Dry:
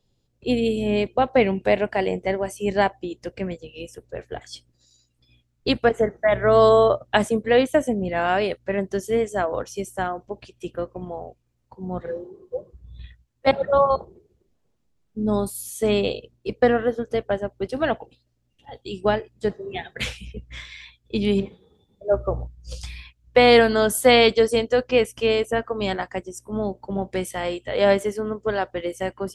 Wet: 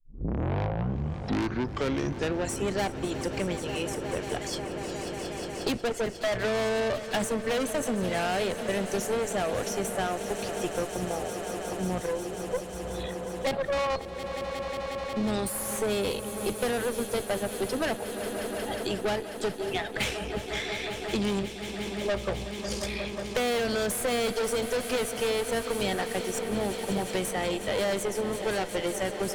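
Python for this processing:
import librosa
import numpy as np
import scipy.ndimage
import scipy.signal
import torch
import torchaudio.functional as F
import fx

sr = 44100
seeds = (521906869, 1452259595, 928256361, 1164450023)

y = fx.tape_start_head(x, sr, length_s=2.69)
y = fx.peak_eq(y, sr, hz=11000.0, db=8.5, octaves=2.5)
y = fx.notch(y, sr, hz=990.0, q=7.6)
y = fx.tube_stage(y, sr, drive_db=25.0, bias=0.55)
y = fx.echo_swell(y, sr, ms=180, loudest=5, wet_db=-17.0)
y = fx.band_squash(y, sr, depth_pct=70)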